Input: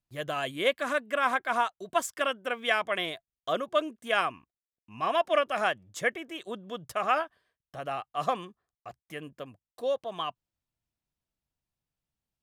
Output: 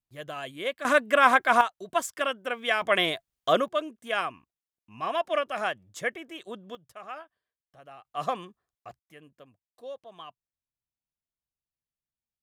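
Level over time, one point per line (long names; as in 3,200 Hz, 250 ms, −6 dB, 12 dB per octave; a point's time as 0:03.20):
−5 dB
from 0:00.85 +7.5 dB
from 0:01.61 +0.5 dB
from 0:02.82 +7 dB
from 0:03.68 −2 dB
from 0:06.75 −14 dB
from 0:08.05 −1 dB
from 0:08.99 −11 dB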